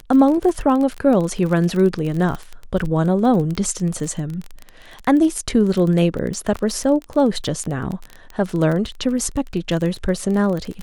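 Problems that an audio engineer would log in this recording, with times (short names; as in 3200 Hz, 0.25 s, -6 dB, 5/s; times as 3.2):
crackle 27/s -23 dBFS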